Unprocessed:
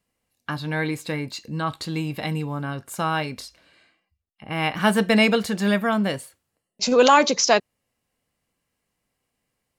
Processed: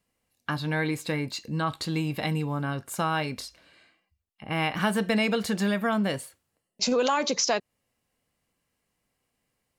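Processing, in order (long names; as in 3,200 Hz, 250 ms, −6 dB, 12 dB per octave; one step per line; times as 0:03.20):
in parallel at −2 dB: brickwall limiter −13 dBFS, peak gain reduction 9.5 dB
on the sum: downward compressor 3 to 1, threshold −17 dBFS, peak gain reduction 8 dB
level −5.5 dB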